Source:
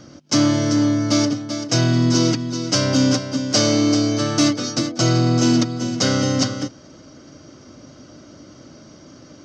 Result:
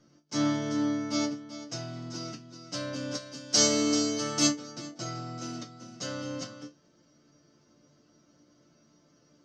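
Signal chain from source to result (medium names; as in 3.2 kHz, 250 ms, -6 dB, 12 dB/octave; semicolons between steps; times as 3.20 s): 3.15–4.47 s: treble shelf 3.2 kHz +11.5 dB; chord resonator D3 minor, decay 0.2 s; upward expansion 1.5:1, over -34 dBFS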